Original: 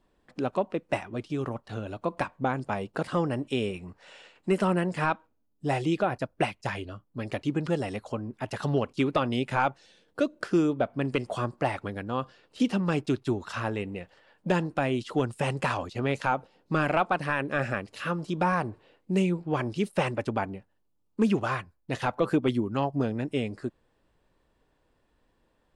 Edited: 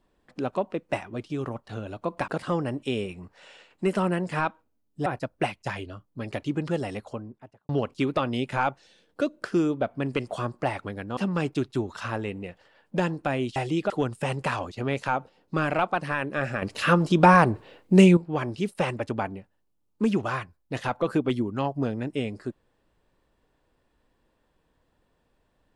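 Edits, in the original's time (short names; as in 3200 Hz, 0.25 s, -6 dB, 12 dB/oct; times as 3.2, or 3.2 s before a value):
2.28–2.93 cut
5.71–6.05 move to 15.08
7.9–8.68 studio fade out
12.16–12.69 cut
17.8–19.35 gain +10 dB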